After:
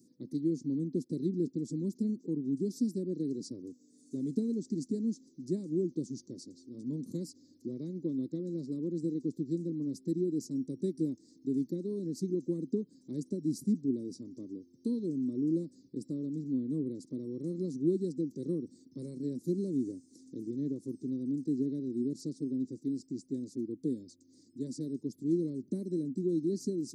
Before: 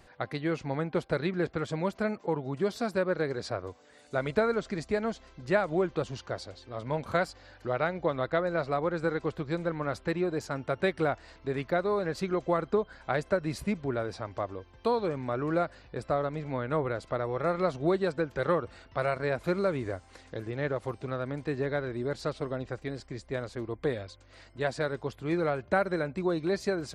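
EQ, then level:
high-pass filter 160 Hz 24 dB per octave
elliptic band-stop filter 330–5,700 Hz, stop band 40 dB
parametric band 260 Hz +8.5 dB 0.44 octaves
0.0 dB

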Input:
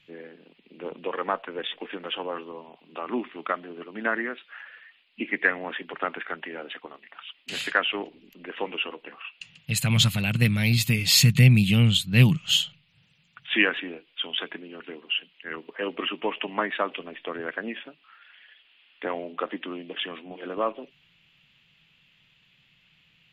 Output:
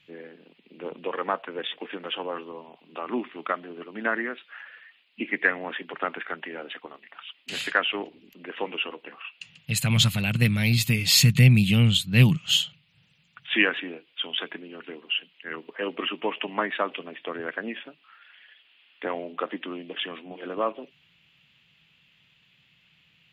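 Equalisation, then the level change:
high-pass filter 46 Hz
0.0 dB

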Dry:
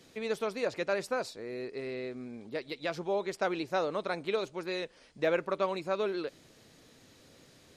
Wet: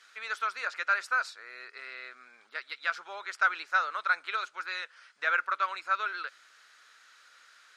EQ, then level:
high-pass with resonance 1,400 Hz, resonance Q 5.8
high-frequency loss of the air 67 metres
high-shelf EQ 7,500 Hz +10 dB
0.0 dB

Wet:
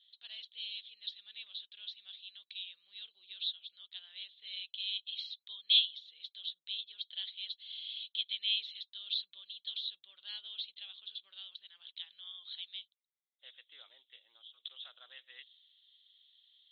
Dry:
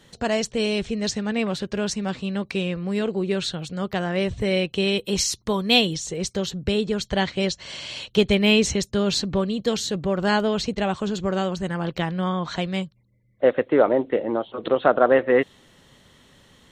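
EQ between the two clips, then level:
flat-topped band-pass 3,600 Hz, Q 5.2
high-frequency loss of the air 400 metres
+7.5 dB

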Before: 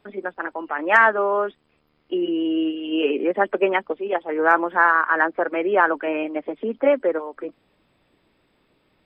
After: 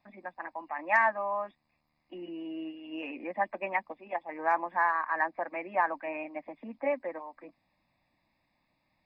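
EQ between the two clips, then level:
low-shelf EQ 150 Hz −5.5 dB
phaser with its sweep stopped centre 2,100 Hz, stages 8
−6.5 dB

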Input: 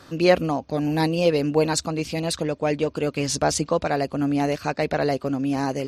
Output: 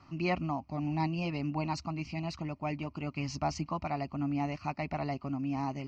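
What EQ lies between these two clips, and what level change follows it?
high-frequency loss of the air 190 metres
phaser with its sweep stopped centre 2,400 Hz, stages 8
−5.5 dB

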